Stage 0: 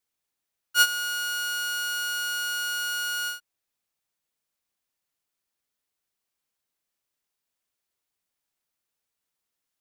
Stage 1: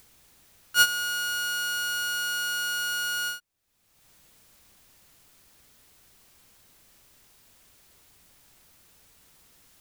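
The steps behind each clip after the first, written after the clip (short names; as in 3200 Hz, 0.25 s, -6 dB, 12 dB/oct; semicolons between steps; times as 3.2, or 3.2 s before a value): low shelf 190 Hz +12 dB; upward compressor, threshold -38 dBFS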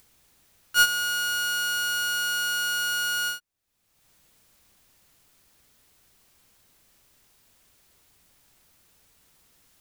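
sample leveller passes 1; gain -1.5 dB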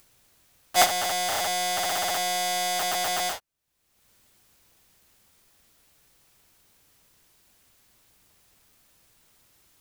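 cycle switcher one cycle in 2, inverted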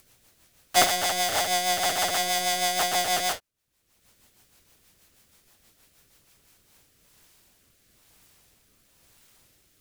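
rotary speaker horn 6.3 Hz, later 1 Hz, at 6.2; gain +4.5 dB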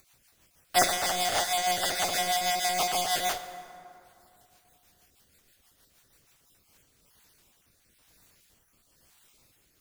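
random spectral dropouts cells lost 26%; plate-style reverb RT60 2.7 s, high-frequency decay 0.5×, DRR 9.5 dB; gain -2 dB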